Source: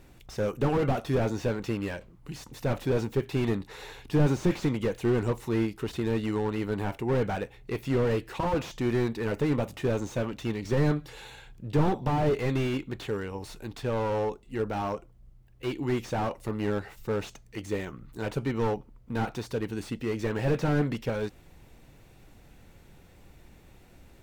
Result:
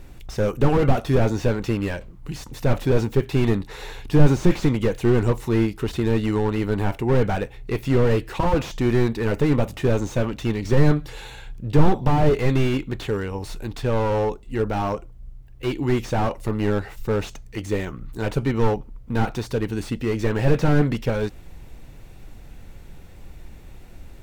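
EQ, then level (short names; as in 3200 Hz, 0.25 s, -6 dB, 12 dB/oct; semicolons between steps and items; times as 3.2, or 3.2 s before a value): low shelf 64 Hz +11.5 dB; +6.0 dB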